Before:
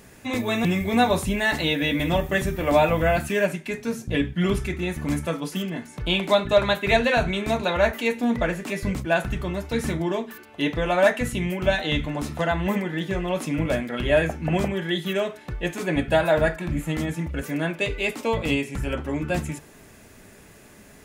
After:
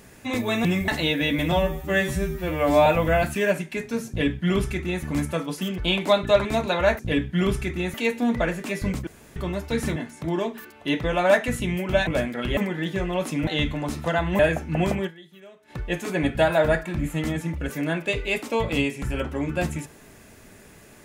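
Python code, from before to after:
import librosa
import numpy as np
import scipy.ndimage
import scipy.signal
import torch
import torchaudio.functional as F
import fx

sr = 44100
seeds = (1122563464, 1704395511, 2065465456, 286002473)

y = fx.edit(x, sr, fx.cut(start_s=0.88, length_s=0.61),
    fx.stretch_span(start_s=2.13, length_s=0.67, factor=2.0),
    fx.duplicate(start_s=4.02, length_s=0.95, to_s=7.95),
    fx.move(start_s=5.72, length_s=0.28, to_s=9.97),
    fx.cut(start_s=6.67, length_s=0.74),
    fx.room_tone_fill(start_s=9.08, length_s=0.29),
    fx.swap(start_s=11.8, length_s=0.92, other_s=13.62, other_length_s=0.5),
    fx.fade_down_up(start_s=14.79, length_s=0.65, db=-22.0, fade_s=0.3, curve='exp'), tone=tone)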